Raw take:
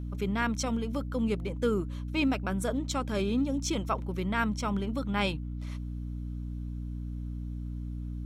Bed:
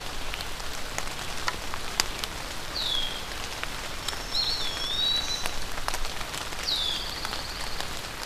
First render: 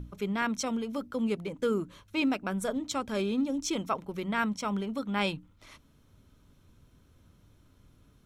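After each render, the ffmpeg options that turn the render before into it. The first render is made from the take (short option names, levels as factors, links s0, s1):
-af "bandreject=f=60:t=h:w=6,bandreject=f=120:t=h:w=6,bandreject=f=180:t=h:w=6,bandreject=f=240:t=h:w=6,bandreject=f=300:t=h:w=6"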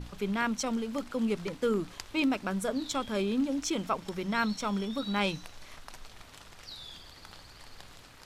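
-filter_complex "[1:a]volume=0.126[s0];[0:a][s0]amix=inputs=2:normalize=0"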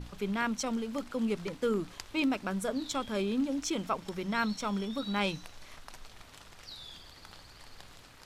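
-af "volume=0.841"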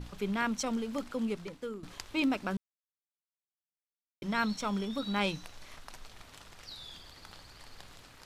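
-filter_complex "[0:a]asplit=4[s0][s1][s2][s3];[s0]atrim=end=1.83,asetpts=PTS-STARTPTS,afade=t=out:st=1.06:d=0.77:silence=0.16788[s4];[s1]atrim=start=1.83:end=2.57,asetpts=PTS-STARTPTS,afade=t=in:d=0.004:c=hsin:silence=0.16788,afade=t=out:st=0.736:d=0.004:c=hsin[s5];[s2]atrim=start=2.57:end=4.22,asetpts=PTS-STARTPTS,volume=0[s6];[s3]atrim=start=4.22,asetpts=PTS-STARTPTS,afade=t=in:d=0.004:c=hsin[s7];[s4][s5][s6][s7]concat=n=4:v=0:a=1"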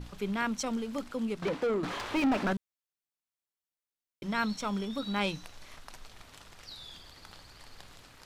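-filter_complex "[0:a]asettb=1/sr,asplit=3[s0][s1][s2];[s0]atrim=end=1.424[s3];[s1]atrim=start=1.42:end=2.53,asetpts=PTS-STARTPTS,afade=t=in:d=0.004:c=qsin,afade=t=out:st=1.106:d=0.004:c=qsin,asplit=2[s4][s5];[s5]highpass=f=720:p=1,volume=35.5,asoftclip=type=tanh:threshold=0.106[s6];[s4][s6]amix=inputs=2:normalize=0,lowpass=f=1100:p=1,volume=0.501[s7];[s2]atrim=start=2.526[s8];[s3][s7]acrossfade=d=0.004:c1=hsin:c2=qsin[s9];[s9][s8]acrossfade=d=0.004:c1=qsin:c2=hsin"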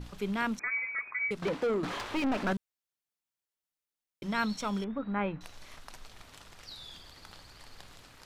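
-filter_complex "[0:a]asettb=1/sr,asplit=3[s0][s1][s2];[s0]atrim=end=0.594[s3];[s1]atrim=start=0.59:end=1.31,asetpts=PTS-STARTPTS,afade=t=in:d=0.004:c=qsin,afade=t=out:st=0.716:d=0.004:c=qsin,lowpass=f=2100:t=q:w=0.5098,lowpass=f=2100:t=q:w=0.6013,lowpass=f=2100:t=q:w=0.9,lowpass=f=2100:t=q:w=2.563,afreqshift=-2500[s4];[s2]atrim=start=1.306[s5];[s3][s4]acrossfade=d=0.004:c1=hsin:c2=qsin[s6];[s6][s5]acrossfade=d=0.004:c1=qsin:c2=hsin,asettb=1/sr,asplit=3[s7][s8][s9];[s7]atrim=end=2.034[s10];[s8]atrim=start=2.03:end=2.47,asetpts=PTS-STARTPTS,afade=t=in:d=0.004:c=qsin,afade=t=out:st=0.436:d=0.004:c=qsin,aeval=exprs='(tanh(15.8*val(0)+0.45)-tanh(0.45))/15.8':c=same[s11];[s9]atrim=start=2.466[s12];[s10][s11]acrossfade=d=0.004:c1=hsin:c2=qsin[s13];[s13][s12]acrossfade=d=0.004:c1=qsin:c2=hsin,asettb=1/sr,asplit=3[s14][s15][s16];[s14]atrim=end=4.844[s17];[s15]atrim=start=4.84:end=5.41,asetpts=PTS-STARTPTS,afade=t=in:d=0.004:c=qsin,afade=t=out:st=0.566:d=0.004:c=qsin,lowpass=f=2000:w=0.5412,lowpass=f=2000:w=1.3066[s18];[s16]atrim=start=5.406[s19];[s17][s18]acrossfade=d=0.004:c1=hsin:c2=qsin[s20];[s20][s19]acrossfade=d=0.004:c1=qsin:c2=hsin"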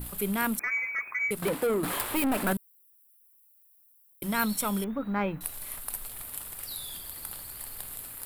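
-filter_complex "[0:a]aexciter=amount=10.5:drive=9.4:freq=9000,asplit=2[s0][s1];[s1]asoftclip=type=tanh:threshold=0.0422,volume=0.501[s2];[s0][s2]amix=inputs=2:normalize=0"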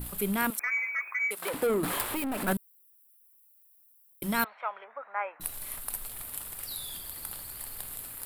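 -filter_complex "[0:a]asettb=1/sr,asplit=3[s0][s1][s2];[s0]atrim=end=0.504[s3];[s1]atrim=start=0.5:end=1.54,asetpts=PTS-STARTPTS,afade=t=in:d=0.004:c=qsin,afade=t=out:st=1.036:d=0.004:c=qsin,highpass=620[s4];[s2]atrim=start=1.536[s5];[s3][s4]acrossfade=d=0.004:c1=hsin:c2=qsin[s6];[s6][s5]acrossfade=d=0.004:c1=qsin:c2=hsin,asettb=1/sr,asplit=3[s7][s8][s9];[s7]atrim=end=2.044[s10];[s8]atrim=start=2.04:end=2.48,asetpts=PTS-STARTPTS,afade=t=in:d=0.004:c=qsin,afade=t=out:st=0.436:d=0.004:c=qsin,acompressor=threshold=0.0355:ratio=5:attack=3.2:release=140:knee=1:detection=peak[s11];[s9]atrim=start=2.476[s12];[s10][s11]acrossfade=d=0.004:c1=hsin:c2=qsin[s13];[s13][s12]acrossfade=d=0.004:c1=qsin:c2=hsin,asettb=1/sr,asplit=3[s14][s15][s16];[s14]atrim=end=4.444[s17];[s15]atrim=start=4.44:end=5.4,asetpts=PTS-STARTPTS,afade=t=in:d=0.004:c=qsin,afade=t=out:st=0.956:d=0.004:c=qsin,asuperpass=centerf=1200:order=8:qfactor=0.67[s18];[s16]atrim=start=5.396[s19];[s17][s18]acrossfade=d=0.004:c1=hsin:c2=qsin[s20];[s20][s19]acrossfade=d=0.004:c1=qsin:c2=hsin"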